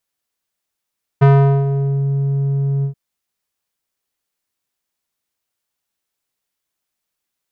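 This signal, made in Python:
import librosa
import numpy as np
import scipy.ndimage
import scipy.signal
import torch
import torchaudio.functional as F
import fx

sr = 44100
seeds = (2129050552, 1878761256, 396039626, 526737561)

y = fx.sub_voice(sr, note=49, wave='square', cutoff_hz=260.0, q=0.87, env_oct=2.5, env_s=0.83, attack_ms=16.0, decay_s=0.42, sustain_db=-9.5, release_s=0.1, note_s=1.63, slope=12)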